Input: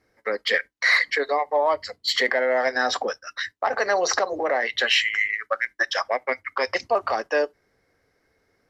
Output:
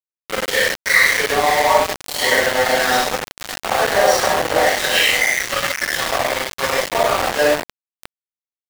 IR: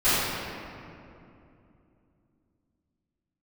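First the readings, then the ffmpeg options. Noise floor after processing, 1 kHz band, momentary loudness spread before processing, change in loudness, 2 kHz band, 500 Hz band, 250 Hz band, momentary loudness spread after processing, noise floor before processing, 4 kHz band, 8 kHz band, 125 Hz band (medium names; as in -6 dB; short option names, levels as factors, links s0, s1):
under -85 dBFS, +7.5 dB, 8 LU, +6.5 dB, +6.0 dB, +5.5 dB, +8.5 dB, 8 LU, -71 dBFS, +6.5 dB, +12.0 dB, no reading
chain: -filter_complex "[0:a]aecho=1:1:568:0.299[s0];[1:a]atrim=start_sample=2205,atrim=end_sample=6615,asetrate=32634,aresample=44100[s1];[s0][s1]afir=irnorm=-1:irlink=0,aeval=exprs='val(0)*gte(abs(val(0)),0.631)':c=same,volume=0.266"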